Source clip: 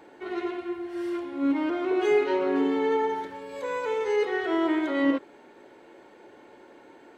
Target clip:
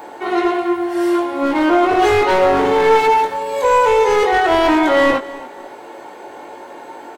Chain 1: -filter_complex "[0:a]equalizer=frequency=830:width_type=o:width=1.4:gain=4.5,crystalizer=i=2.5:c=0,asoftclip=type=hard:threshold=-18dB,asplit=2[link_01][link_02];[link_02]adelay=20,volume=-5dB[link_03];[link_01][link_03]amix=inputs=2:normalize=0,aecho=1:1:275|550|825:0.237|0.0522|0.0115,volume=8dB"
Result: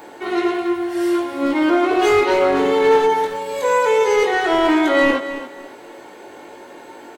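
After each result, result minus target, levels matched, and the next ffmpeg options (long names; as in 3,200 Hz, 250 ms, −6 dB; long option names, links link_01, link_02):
echo-to-direct +6.5 dB; 1,000 Hz band −3.0 dB
-filter_complex "[0:a]equalizer=frequency=830:width_type=o:width=1.4:gain=4.5,crystalizer=i=2.5:c=0,asoftclip=type=hard:threshold=-18dB,asplit=2[link_01][link_02];[link_02]adelay=20,volume=-5dB[link_03];[link_01][link_03]amix=inputs=2:normalize=0,aecho=1:1:275|550:0.112|0.0247,volume=8dB"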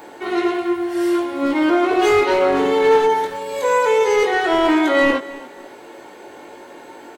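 1,000 Hz band −3.0 dB
-filter_complex "[0:a]equalizer=frequency=830:width_type=o:width=1.4:gain=12,crystalizer=i=2.5:c=0,asoftclip=type=hard:threshold=-18dB,asplit=2[link_01][link_02];[link_02]adelay=20,volume=-5dB[link_03];[link_01][link_03]amix=inputs=2:normalize=0,aecho=1:1:275|550:0.112|0.0247,volume=8dB"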